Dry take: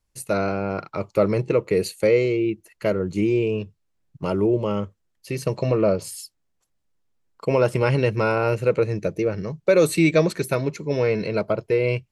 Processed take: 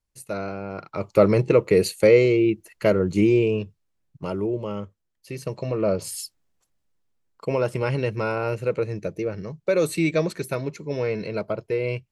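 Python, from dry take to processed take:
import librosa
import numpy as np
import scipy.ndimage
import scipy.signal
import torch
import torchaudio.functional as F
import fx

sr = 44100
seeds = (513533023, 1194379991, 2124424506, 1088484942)

y = fx.gain(x, sr, db=fx.line((0.72, -7.0), (1.18, 3.0), (3.25, 3.0), (4.5, -6.0), (5.72, -6.0), (6.21, 4.0), (7.63, -4.5)))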